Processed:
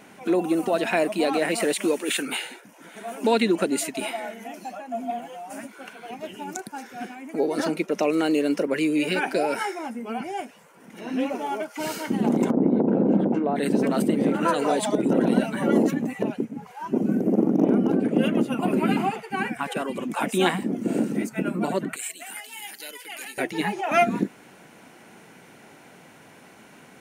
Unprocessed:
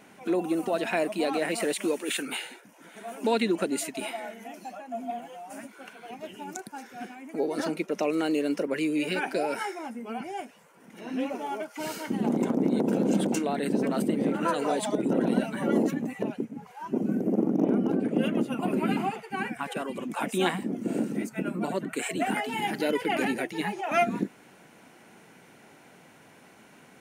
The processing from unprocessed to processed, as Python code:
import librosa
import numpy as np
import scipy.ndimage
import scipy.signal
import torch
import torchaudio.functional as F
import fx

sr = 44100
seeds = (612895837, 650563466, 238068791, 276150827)

y = fx.lowpass(x, sr, hz=1200.0, slope=12, at=(12.5, 13.55), fade=0.02)
y = fx.differentiator(y, sr, at=(21.96, 23.38))
y = y * 10.0 ** (4.5 / 20.0)